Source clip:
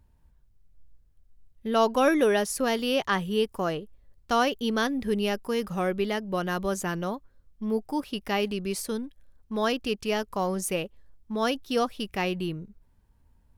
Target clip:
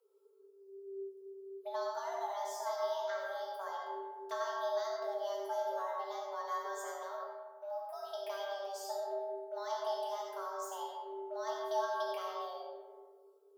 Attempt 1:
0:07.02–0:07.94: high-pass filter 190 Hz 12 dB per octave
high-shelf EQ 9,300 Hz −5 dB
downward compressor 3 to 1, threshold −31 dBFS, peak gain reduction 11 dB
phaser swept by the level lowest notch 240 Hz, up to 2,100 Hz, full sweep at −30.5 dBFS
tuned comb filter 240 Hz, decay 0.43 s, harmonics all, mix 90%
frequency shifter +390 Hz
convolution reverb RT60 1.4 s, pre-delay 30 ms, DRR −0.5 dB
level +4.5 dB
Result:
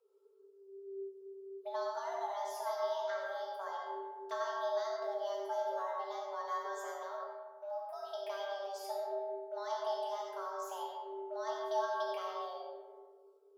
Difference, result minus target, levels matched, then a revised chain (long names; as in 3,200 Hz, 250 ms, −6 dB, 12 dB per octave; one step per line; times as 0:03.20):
8,000 Hz band −3.5 dB
0:07.02–0:07.94: high-pass filter 190 Hz 12 dB per octave
high-shelf EQ 9,300 Hz +6.5 dB
downward compressor 3 to 1, threshold −31 dBFS, peak gain reduction 11 dB
phaser swept by the level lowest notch 240 Hz, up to 2,100 Hz, full sweep at −30.5 dBFS
tuned comb filter 240 Hz, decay 0.43 s, harmonics all, mix 90%
frequency shifter +390 Hz
convolution reverb RT60 1.4 s, pre-delay 30 ms, DRR −0.5 dB
level +4.5 dB